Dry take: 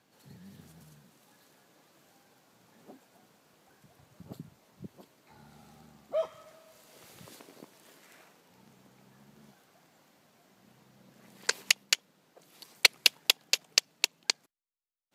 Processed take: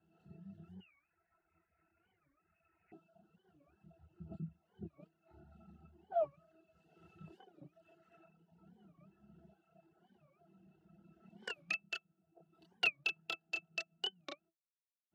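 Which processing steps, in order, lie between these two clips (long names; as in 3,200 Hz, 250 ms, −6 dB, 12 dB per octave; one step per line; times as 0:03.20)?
multi-voice chorus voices 6, 0.41 Hz, delay 28 ms, depth 2.8 ms
0:00.82–0:02.92: voice inversion scrambler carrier 2,700 Hz
resonances in every octave E, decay 0.11 s
reverb reduction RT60 1.2 s
wow of a warped record 45 rpm, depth 250 cents
level +9.5 dB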